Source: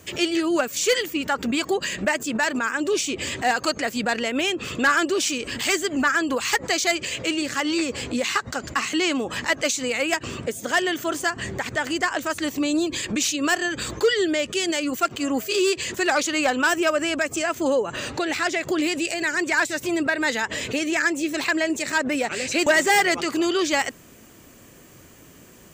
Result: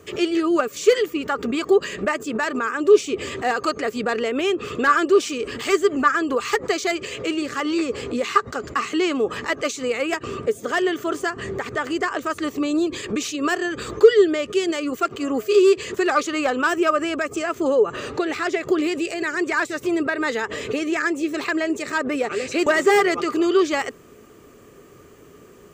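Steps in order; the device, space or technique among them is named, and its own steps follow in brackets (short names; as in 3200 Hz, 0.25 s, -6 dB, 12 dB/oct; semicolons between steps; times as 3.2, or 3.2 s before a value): inside a helmet (high shelf 3900 Hz -7 dB; small resonant body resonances 420/1200 Hz, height 13 dB, ringing for 40 ms); gain -1.5 dB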